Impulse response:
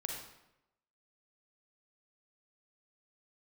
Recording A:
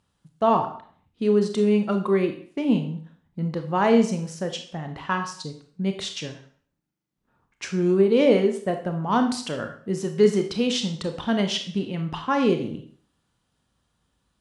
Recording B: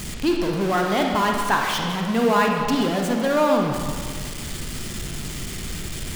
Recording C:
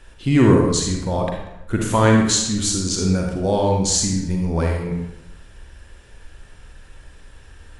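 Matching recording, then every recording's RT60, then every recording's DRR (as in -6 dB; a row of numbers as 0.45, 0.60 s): C; 0.50, 1.8, 0.90 s; 5.5, 1.0, 0.5 dB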